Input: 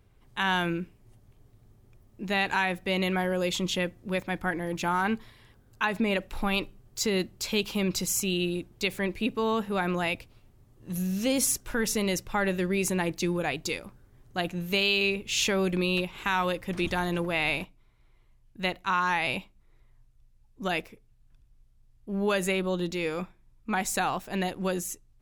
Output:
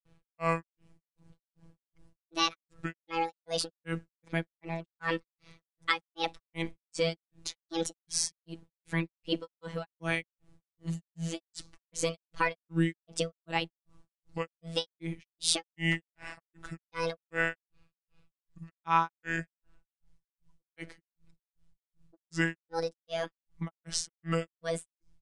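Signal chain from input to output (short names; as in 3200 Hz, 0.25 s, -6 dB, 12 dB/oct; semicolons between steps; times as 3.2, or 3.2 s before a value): grains 0.244 s, grains 2.6/s, pitch spread up and down by 7 st; downsampling 22050 Hz; robotiser 165 Hz; gain +3 dB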